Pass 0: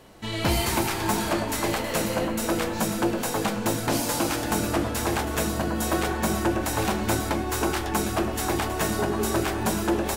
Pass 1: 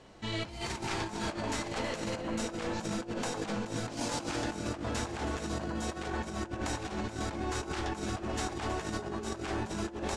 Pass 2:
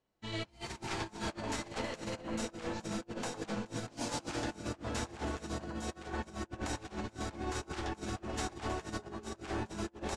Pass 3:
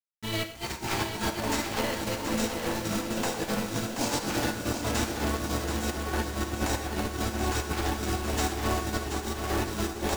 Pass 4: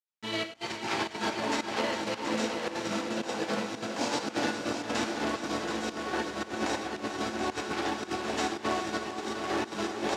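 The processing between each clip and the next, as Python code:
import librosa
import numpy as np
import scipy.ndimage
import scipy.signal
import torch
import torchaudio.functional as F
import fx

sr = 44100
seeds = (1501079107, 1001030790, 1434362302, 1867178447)

y1 = scipy.signal.sosfilt(scipy.signal.butter(4, 7700.0, 'lowpass', fs=sr, output='sos'), x)
y1 = fx.over_compress(y1, sr, threshold_db=-28.0, ratio=-0.5)
y1 = y1 * librosa.db_to_amplitude(-7.0)
y2 = fx.upward_expand(y1, sr, threshold_db=-50.0, expansion=2.5)
y2 = y2 * librosa.db_to_amplitude(-1.0)
y3 = fx.quant_companded(y2, sr, bits=4)
y3 = fx.echo_feedback(y3, sr, ms=729, feedback_pct=49, wet_db=-7.5)
y3 = fx.rev_gated(y3, sr, seeds[0], gate_ms=140, shape='flat', drr_db=7.5)
y3 = y3 * librosa.db_to_amplitude(7.5)
y4 = fx.volume_shaper(y3, sr, bpm=112, per_beat=1, depth_db=-16, release_ms=71.0, shape='slow start')
y4 = fx.bandpass_edges(y4, sr, low_hz=220.0, high_hz=5400.0)
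y4 = y4 + 10.0 ** (-11.0 / 20.0) * np.pad(y4, (int(407 * sr / 1000.0), 0))[:len(y4)]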